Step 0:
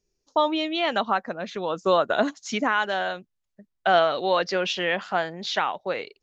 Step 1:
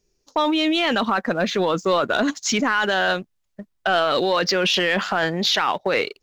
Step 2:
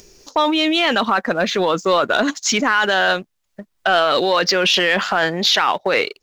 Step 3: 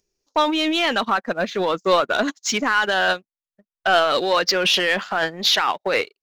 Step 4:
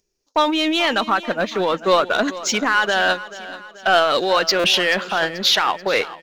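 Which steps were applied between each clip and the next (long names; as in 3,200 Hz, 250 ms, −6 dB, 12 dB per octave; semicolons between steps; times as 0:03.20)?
dynamic equaliser 710 Hz, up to −6 dB, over −34 dBFS, Q 1.6; in parallel at +0.5 dB: compressor whose output falls as the input rises −31 dBFS, ratio −0.5; on the sum: leveller curve on the samples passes 1
low-shelf EQ 280 Hz −6.5 dB; upward compression, threshold −35 dBFS; level +4.5 dB
in parallel at −4.5 dB: soft clipping −17 dBFS, distortion −10 dB; on the sum: expander for the loud parts 2.5 to 1, over −32 dBFS; level −2 dB
repeating echo 434 ms, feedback 49%, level −16 dB; buffer that repeats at 0:04.59, samples 256, times 8; level +1.5 dB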